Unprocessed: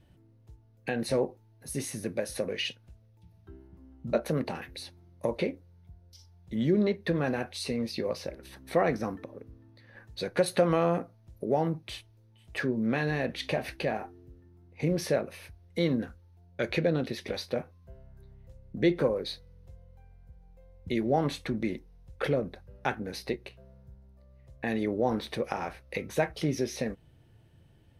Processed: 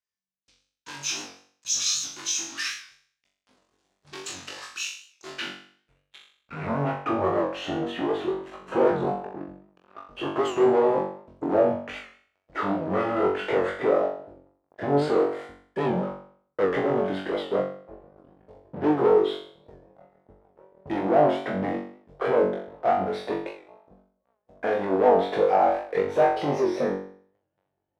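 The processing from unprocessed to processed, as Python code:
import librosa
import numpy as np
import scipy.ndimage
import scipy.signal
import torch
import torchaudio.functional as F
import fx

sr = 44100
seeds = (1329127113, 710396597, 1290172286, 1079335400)

p1 = fx.pitch_glide(x, sr, semitones=-9.0, runs='ending unshifted')
p2 = fx.leveller(p1, sr, passes=5)
p3 = fx.filter_sweep_bandpass(p2, sr, from_hz=5200.0, to_hz=650.0, start_s=5.11, end_s=7.09, q=1.4)
p4 = p3 + fx.room_flutter(p3, sr, wall_m=3.6, rt60_s=0.53, dry=0)
p5 = fx.record_warp(p4, sr, rpm=78.0, depth_cents=100.0)
y = F.gain(torch.from_numpy(p5), -2.5).numpy()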